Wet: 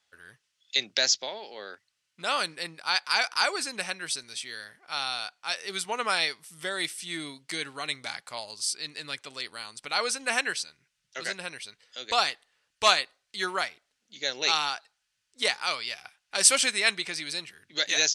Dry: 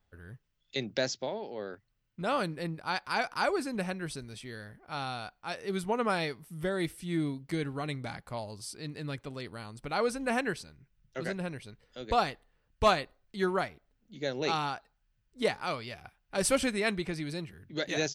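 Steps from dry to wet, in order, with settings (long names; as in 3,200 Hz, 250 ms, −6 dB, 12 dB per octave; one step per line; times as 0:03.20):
meter weighting curve ITU-R 468
level +2 dB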